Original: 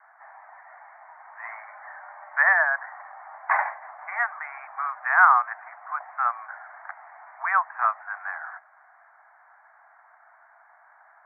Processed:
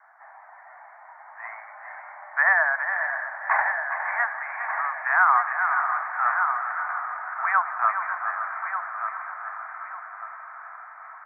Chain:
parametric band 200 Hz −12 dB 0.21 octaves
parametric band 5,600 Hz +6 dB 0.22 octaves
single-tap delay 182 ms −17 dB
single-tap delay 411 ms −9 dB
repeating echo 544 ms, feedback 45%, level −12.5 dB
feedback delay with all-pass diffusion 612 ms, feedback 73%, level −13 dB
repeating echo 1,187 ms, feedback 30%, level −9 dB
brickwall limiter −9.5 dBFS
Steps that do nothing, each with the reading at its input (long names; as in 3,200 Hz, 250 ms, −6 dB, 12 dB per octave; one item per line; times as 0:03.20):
parametric band 200 Hz: nothing at its input below 570 Hz
parametric band 5,600 Hz: nothing at its input above 2,400 Hz